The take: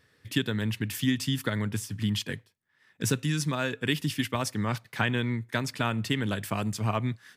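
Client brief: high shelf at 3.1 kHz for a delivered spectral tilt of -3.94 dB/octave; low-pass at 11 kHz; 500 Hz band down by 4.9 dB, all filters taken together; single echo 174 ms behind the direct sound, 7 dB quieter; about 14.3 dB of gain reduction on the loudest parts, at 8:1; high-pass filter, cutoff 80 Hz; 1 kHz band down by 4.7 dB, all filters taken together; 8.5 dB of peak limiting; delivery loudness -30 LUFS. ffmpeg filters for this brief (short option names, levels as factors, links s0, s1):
-af "highpass=80,lowpass=11000,equalizer=f=500:t=o:g=-5,equalizer=f=1000:t=o:g=-6,highshelf=f=3100:g=6,acompressor=threshold=0.0141:ratio=8,alimiter=level_in=2:limit=0.0631:level=0:latency=1,volume=0.501,aecho=1:1:174:0.447,volume=3.35"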